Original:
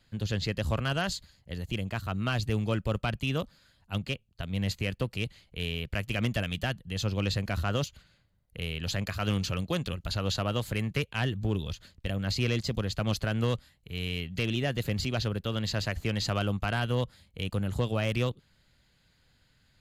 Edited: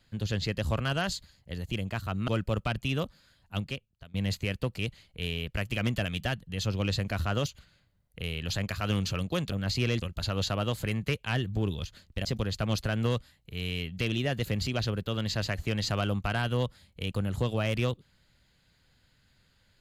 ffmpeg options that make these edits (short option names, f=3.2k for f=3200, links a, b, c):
-filter_complex "[0:a]asplit=6[a][b][c][d][e][f];[a]atrim=end=2.282[g];[b]atrim=start=2.658:end=4.52,asetpts=PTS-STARTPTS,afade=t=out:st=1.272:d=0.59:silence=0.0841395[h];[c]atrim=start=4.52:end=9.902,asetpts=PTS-STARTPTS,afade=t=in:d=0.004:c=hsin:silence=0.0841395[i];[d]atrim=start=12.128:end=12.632[j];[e]atrim=start=9.898:end=12.132[k];[f]atrim=start=12.628[l];[h][i]concat=n=2:v=0:a=1[m];[g][m]acrossfade=d=0.004:c1=hsin:c2=hsin[n];[n][j]acrossfade=d=0.004:c1=hsin:c2=hsin[o];[o][k]acrossfade=d=0.004:c1=hsin:c2=hsin[p];[p][l]acrossfade=d=0.004:c1=hsin:c2=hsin"